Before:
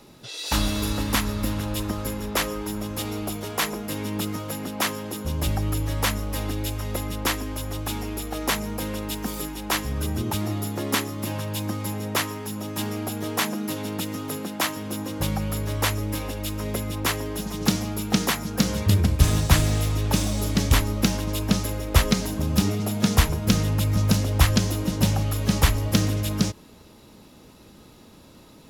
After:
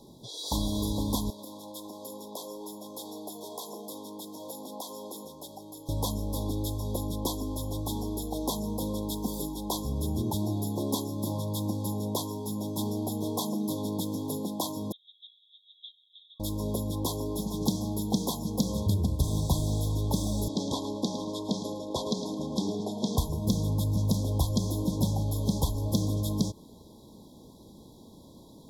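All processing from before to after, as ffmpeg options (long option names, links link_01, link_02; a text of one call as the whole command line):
ffmpeg -i in.wav -filter_complex "[0:a]asettb=1/sr,asplit=3[link_01][link_02][link_03];[link_01]atrim=end=1.304[link_04];[link_02]atrim=start=1.3:end=5.89,asetpts=PTS-STARTPTS,afade=type=in:duration=0.004:curve=qsin,afade=type=out:start_time=4.586:duration=0.004:curve=qsin,acompressor=threshold=-29dB:ratio=6:attack=3.2:release=140:knee=1:detection=peak,highpass=390,bandreject=frequency=60:width_type=h:width=6,bandreject=frequency=120:width_type=h:width=6,bandreject=frequency=180:width_type=h:width=6,bandreject=frequency=240:width_type=h:width=6,bandreject=frequency=300:width_type=h:width=6,bandreject=frequency=360:width_type=h:width=6,bandreject=frequency=420:width_type=h:width=6,bandreject=frequency=480:width_type=h:width=6,bandreject=frequency=540:width_type=h:width=6[link_05];[link_03]atrim=start=5.886[link_06];[link_04][link_05]acrossfade=duration=0.004:curve1=hsin:curve2=qsin[link_07];[link_07][link_06]acrossfade=duration=0.004:curve1=qsin:curve2=hsin,asettb=1/sr,asplit=3[link_08][link_09][link_10];[link_08]atrim=end=14.924[link_11];[link_09]atrim=start=14.92:end=16.4,asetpts=PTS-STARTPTS,afade=type=in:duration=0.004:curve=qsin,afade=type=out:start_time=1.476:duration=0.004:curve=qsin,acompressor=threshold=-28dB:ratio=2:attack=3.2:release=140:knee=1:detection=peak,asuperpass=centerf=3400:order=12:qfactor=4[link_12];[link_10]atrim=start=16.396[link_13];[link_11][link_12]acrossfade=duration=0.004:curve1=hsin:curve2=qsin[link_14];[link_14][link_13]acrossfade=duration=0.004:curve1=qsin:curve2=hsin,asettb=1/sr,asplit=3[link_15][link_16][link_17];[link_15]atrim=end=20.484[link_18];[link_16]atrim=start=20.48:end=23.18,asetpts=PTS-STARTPTS,afade=type=in:duration=0.004:curve=qsin,afade=type=out:start_time=2.696:duration=0.004:curve=qsin,highpass=260,lowpass=5600,aecho=1:1:108|216|324:0.237|0.064|0.0173,atrim=end_sample=119070[link_19];[link_17]atrim=start=23.176[link_20];[link_18][link_19]acrossfade=duration=0.004:curve1=hsin:curve2=qsin[link_21];[link_21][link_20]acrossfade=duration=0.004:curve1=qsin:curve2=hsin,acompressor=threshold=-24dB:ratio=2,equalizer=frequency=230:width_type=o:width=2.7:gain=4,afftfilt=real='re*(1-between(b*sr/4096,1100,3200))':imag='im*(1-between(b*sr/4096,1100,3200))':win_size=4096:overlap=0.75,volume=-4.5dB" out.wav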